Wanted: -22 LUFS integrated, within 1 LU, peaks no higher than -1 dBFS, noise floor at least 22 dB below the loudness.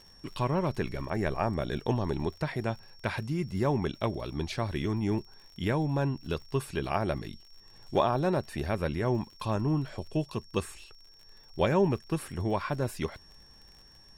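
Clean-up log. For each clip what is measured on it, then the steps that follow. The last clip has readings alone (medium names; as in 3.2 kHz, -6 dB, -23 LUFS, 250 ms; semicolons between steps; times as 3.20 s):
tick rate 58 per s; steady tone 5.5 kHz; tone level -55 dBFS; loudness -31.5 LUFS; peak level -12.0 dBFS; loudness target -22.0 LUFS
-> de-click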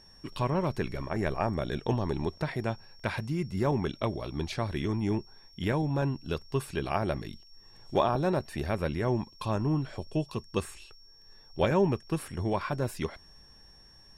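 tick rate 0.071 per s; steady tone 5.5 kHz; tone level -55 dBFS
-> band-stop 5.5 kHz, Q 30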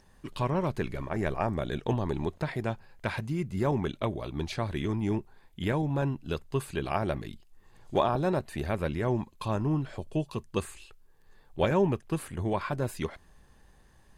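steady tone not found; loudness -31.5 LUFS; peak level -12.0 dBFS; loudness target -22.0 LUFS
-> trim +9.5 dB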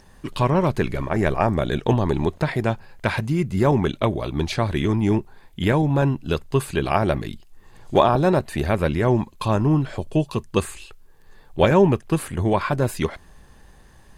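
loudness -22.0 LUFS; peak level -2.5 dBFS; noise floor -50 dBFS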